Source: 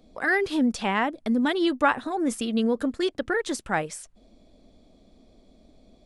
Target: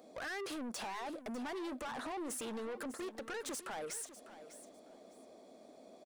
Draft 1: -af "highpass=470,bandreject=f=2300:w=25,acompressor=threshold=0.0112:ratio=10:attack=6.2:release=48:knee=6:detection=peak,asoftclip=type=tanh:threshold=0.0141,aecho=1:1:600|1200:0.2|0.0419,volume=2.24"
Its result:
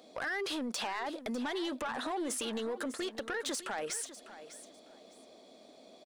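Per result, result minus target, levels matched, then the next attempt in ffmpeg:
saturation: distortion -6 dB; 4 kHz band +3.5 dB
-af "highpass=470,bandreject=f=2300:w=25,acompressor=threshold=0.0112:ratio=10:attack=6.2:release=48:knee=6:detection=peak,asoftclip=type=tanh:threshold=0.00473,aecho=1:1:600|1200:0.2|0.0419,volume=2.24"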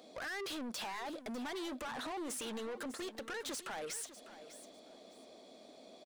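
4 kHz band +4.0 dB
-af "highpass=470,equalizer=f=3600:w=1:g=-11,bandreject=f=2300:w=25,acompressor=threshold=0.0112:ratio=10:attack=6.2:release=48:knee=6:detection=peak,asoftclip=type=tanh:threshold=0.00473,aecho=1:1:600|1200:0.2|0.0419,volume=2.24"

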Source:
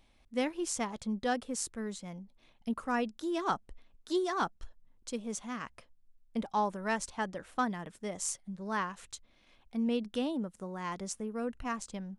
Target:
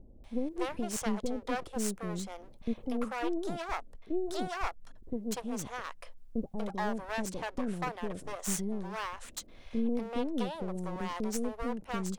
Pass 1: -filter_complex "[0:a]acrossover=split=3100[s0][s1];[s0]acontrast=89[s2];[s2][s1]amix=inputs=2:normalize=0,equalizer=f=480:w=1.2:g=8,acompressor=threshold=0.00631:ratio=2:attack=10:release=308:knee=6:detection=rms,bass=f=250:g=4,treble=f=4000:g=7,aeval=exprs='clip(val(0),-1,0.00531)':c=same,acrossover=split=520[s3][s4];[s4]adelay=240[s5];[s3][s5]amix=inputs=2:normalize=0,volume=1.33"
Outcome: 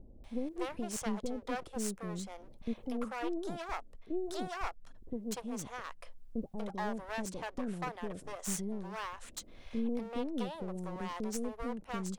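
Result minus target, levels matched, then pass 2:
compression: peak gain reduction +4 dB
-filter_complex "[0:a]acrossover=split=3100[s0][s1];[s0]acontrast=89[s2];[s2][s1]amix=inputs=2:normalize=0,equalizer=f=480:w=1.2:g=8,acompressor=threshold=0.015:ratio=2:attack=10:release=308:knee=6:detection=rms,bass=f=250:g=4,treble=f=4000:g=7,aeval=exprs='clip(val(0),-1,0.00531)':c=same,acrossover=split=520[s3][s4];[s4]adelay=240[s5];[s3][s5]amix=inputs=2:normalize=0,volume=1.33"

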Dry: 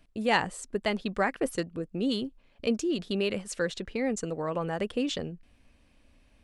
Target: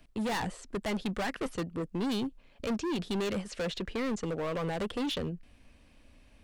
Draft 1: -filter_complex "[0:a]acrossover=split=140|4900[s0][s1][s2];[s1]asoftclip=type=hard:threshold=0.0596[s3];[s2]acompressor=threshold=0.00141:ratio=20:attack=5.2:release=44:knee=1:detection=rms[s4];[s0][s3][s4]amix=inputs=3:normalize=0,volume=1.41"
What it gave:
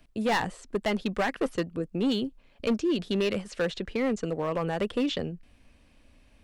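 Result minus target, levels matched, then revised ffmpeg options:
hard clipper: distortion -6 dB
-filter_complex "[0:a]acrossover=split=140|4900[s0][s1][s2];[s1]asoftclip=type=hard:threshold=0.0211[s3];[s2]acompressor=threshold=0.00141:ratio=20:attack=5.2:release=44:knee=1:detection=rms[s4];[s0][s3][s4]amix=inputs=3:normalize=0,volume=1.41"

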